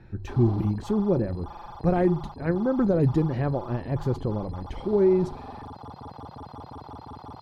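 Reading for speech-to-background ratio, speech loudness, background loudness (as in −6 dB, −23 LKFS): 16.5 dB, −25.5 LKFS, −42.0 LKFS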